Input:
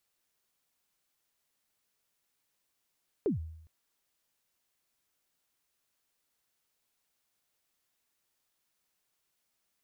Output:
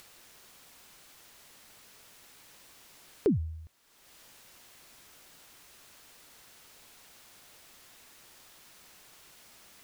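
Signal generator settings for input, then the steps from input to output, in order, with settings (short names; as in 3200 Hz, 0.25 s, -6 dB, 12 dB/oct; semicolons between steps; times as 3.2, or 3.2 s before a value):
kick drum length 0.41 s, from 470 Hz, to 80 Hz, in 0.127 s, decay 0.77 s, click off, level -23.5 dB
high shelf 7500 Hz -6 dB; in parallel at -0.5 dB: upward compressor, threshold -34 dBFS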